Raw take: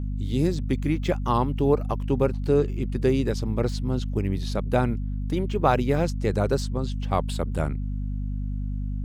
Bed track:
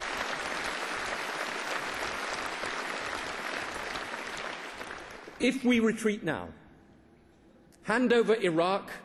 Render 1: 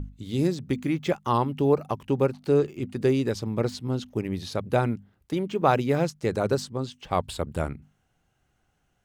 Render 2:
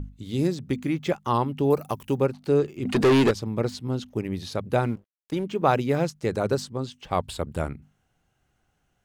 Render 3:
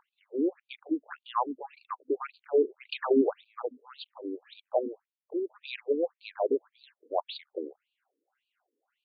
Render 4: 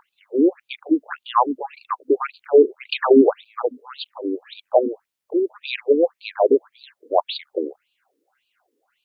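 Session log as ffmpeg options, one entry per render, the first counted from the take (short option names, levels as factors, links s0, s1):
-af "bandreject=f=50:t=h:w=6,bandreject=f=100:t=h:w=6,bandreject=f=150:t=h:w=6,bandreject=f=200:t=h:w=6,bandreject=f=250:t=h:w=6"
-filter_complex "[0:a]asettb=1/sr,asplit=3[s0][s1][s2];[s0]atrim=end=1.704[s3];[s1]atrim=start=1.7:end=2.18,asetpts=PTS-STARTPTS,afade=t=in:d=0.004:c=qsin,afade=t=out:st=0.476:d=0.004:c=qsin,aemphasis=mode=production:type=50fm[s4];[s2]atrim=start=2.176[s5];[s3][s4]acrossfade=d=0.004:c1=hsin:c2=qsin[s6];[s6][s5]acrossfade=d=0.004:c1=qsin:c2=hsin,asettb=1/sr,asplit=3[s7][s8][s9];[s7]atrim=end=2.854[s10];[s8]atrim=start=2.85:end=3.31,asetpts=PTS-STARTPTS,afade=t=in:d=0.004:c=qsin,afade=t=out:st=0.456:d=0.004:c=qsin,asplit=2[s11][s12];[s12]highpass=f=720:p=1,volume=31.6,asoftclip=type=tanh:threshold=0.282[s13];[s11][s13]amix=inputs=2:normalize=0,lowpass=f=3400:p=1,volume=0.501[s14];[s9]atrim=start=3.306[s15];[s10][s14]acrossfade=d=0.004:c1=hsin:c2=qsin[s16];[s16][s15]acrossfade=d=0.004:c1=qsin:c2=hsin,asettb=1/sr,asplit=3[s17][s18][s19];[s17]atrim=end=4.804[s20];[s18]atrim=start=4.8:end=5.44,asetpts=PTS-STARTPTS,afade=t=in:d=0.004:c=qsin,afade=t=out:st=0.636:d=0.004:c=qsin,aeval=exprs='sgn(val(0))*max(abs(val(0))-0.00316,0)':c=same[s21];[s19]atrim=start=5.436[s22];[s20][s21]acrossfade=d=0.004:c1=hsin:c2=qsin[s23];[s23][s22]acrossfade=d=0.004:c1=qsin:c2=hsin"
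-filter_complex "[0:a]acrossover=split=230|900|1800[s0][s1][s2][s3];[s0]volume=29.9,asoftclip=hard,volume=0.0335[s4];[s4][s1][s2][s3]amix=inputs=4:normalize=0,afftfilt=real='re*between(b*sr/1024,350*pow(3400/350,0.5+0.5*sin(2*PI*1.8*pts/sr))/1.41,350*pow(3400/350,0.5+0.5*sin(2*PI*1.8*pts/sr))*1.41)':imag='im*between(b*sr/1024,350*pow(3400/350,0.5+0.5*sin(2*PI*1.8*pts/sr))/1.41,350*pow(3400/350,0.5+0.5*sin(2*PI*1.8*pts/sr))*1.41)':win_size=1024:overlap=0.75"
-af "volume=3.76,alimiter=limit=0.708:level=0:latency=1"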